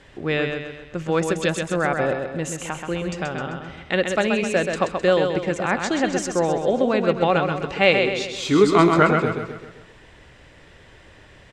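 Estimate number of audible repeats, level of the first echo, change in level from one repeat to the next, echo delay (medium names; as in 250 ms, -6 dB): 5, -5.5 dB, -6.5 dB, 130 ms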